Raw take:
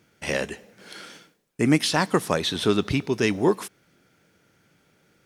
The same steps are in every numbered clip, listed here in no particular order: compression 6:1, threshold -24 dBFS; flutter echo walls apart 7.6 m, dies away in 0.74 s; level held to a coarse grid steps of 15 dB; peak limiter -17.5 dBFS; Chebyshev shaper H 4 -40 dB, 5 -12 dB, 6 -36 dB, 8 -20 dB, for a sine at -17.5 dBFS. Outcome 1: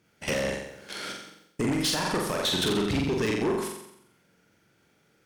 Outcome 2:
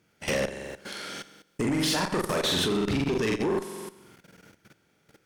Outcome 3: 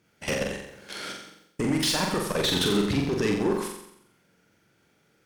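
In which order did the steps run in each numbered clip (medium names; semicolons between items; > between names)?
compression > level held to a coarse grid > flutter echo > Chebyshev shaper > peak limiter; flutter echo > compression > level held to a coarse grid > peak limiter > Chebyshev shaper; peak limiter > level held to a coarse grid > compression > Chebyshev shaper > flutter echo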